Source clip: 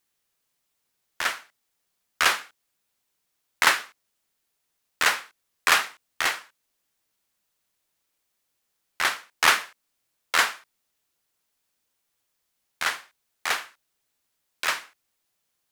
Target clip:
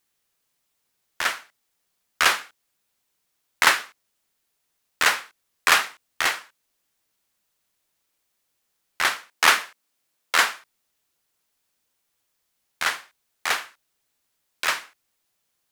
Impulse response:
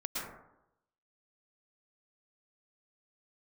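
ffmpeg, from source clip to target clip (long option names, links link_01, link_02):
-filter_complex "[0:a]asettb=1/sr,asplit=3[link_01][link_02][link_03];[link_01]atrim=end=9.304[link_04];[link_02]atrim=start=9.3:end=10.5,asetpts=PTS-STARTPTS,afade=type=in:duration=0.004:curve=qsin,afade=type=out:start_time=1.196:duration=0.004:curve=qsin,highpass=140[link_05];[link_03]atrim=start=10.496[link_06];[link_04][link_05]acrossfade=duration=0.004:curve1=hsin:curve2=qsin[link_07];[link_07][link_06]acrossfade=duration=0.004:curve1=qsin:curve2=hsin,volume=2dB"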